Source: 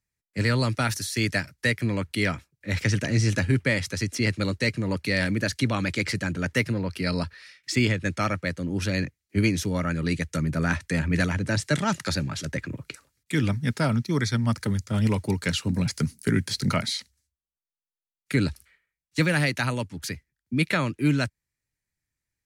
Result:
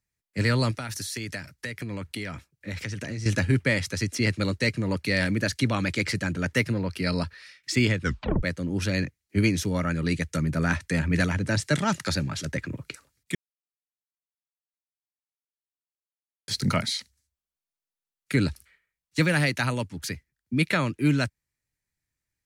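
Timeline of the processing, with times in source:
0.71–3.26 compressor 12:1, threshold -29 dBFS
8.01 tape stop 0.42 s
13.35–16.48 mute

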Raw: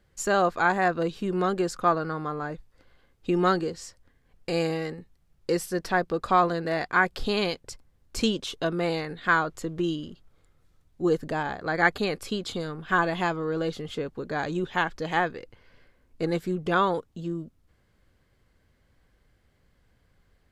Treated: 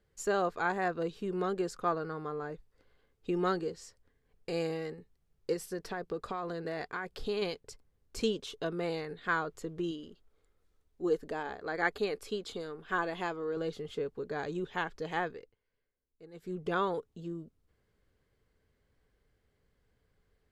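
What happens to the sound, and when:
5.53–7.42 compressor, threshold -24 dBFS
9.91–13.57 bell 130 Hz -13.5 dB 0.59 oct
15.3–16.59 dip -18.5 dB, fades 0.26 s
whole clip: bell 430 Hz +9.5 dB 0.25 oct; gain -9 dB

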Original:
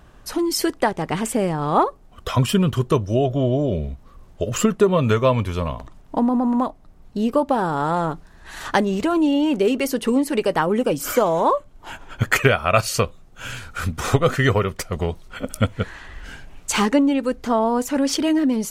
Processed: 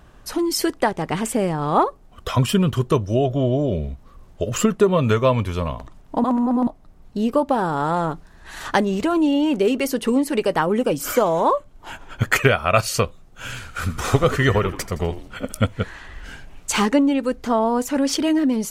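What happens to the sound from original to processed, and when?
6.24–6.67 reverse
13.47–15.52 frequency-shifting echo 83 ms, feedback 44%, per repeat -71 Hz, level -13 dB

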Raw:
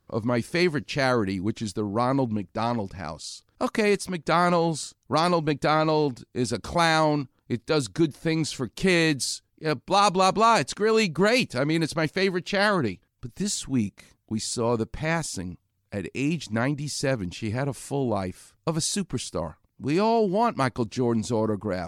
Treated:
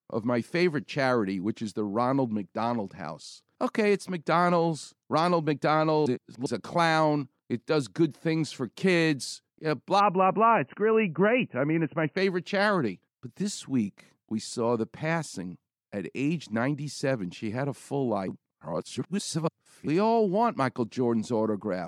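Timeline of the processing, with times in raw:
6.06–6.46 reverse
10–12.17 brick-wall FIR low-pass 3000 Hz
18.28–19.87 reverse
whole clip: HPF 130 Hz 24 dB/oct; high shelf 3600 Hz -8.5 dB; gate with hold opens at -51 dBFS; gain -1.5 dB

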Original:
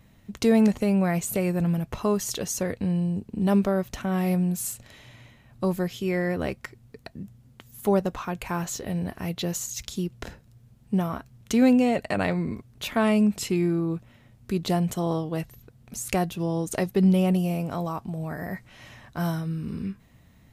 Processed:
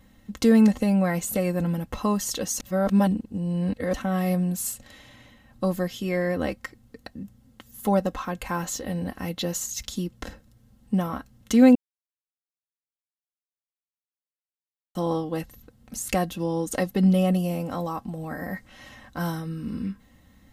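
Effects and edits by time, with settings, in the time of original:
2.6–3.94 reverse
11.75–14.95 mute
whole clip: notch 2400 Hz, Q 13; comb 3.8 ms, depth 61%

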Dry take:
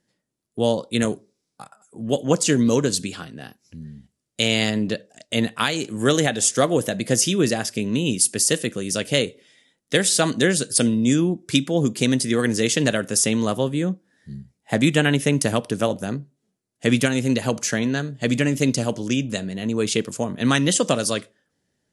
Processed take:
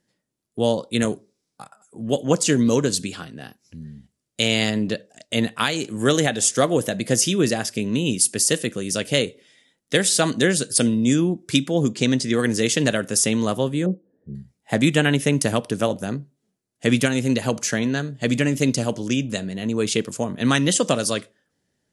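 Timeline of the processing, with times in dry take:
11.92–12.34 LPF 7700 Hz 24 dB/oct
13.86–14.35 synth low-pass 460 Hz, resonance Q 3

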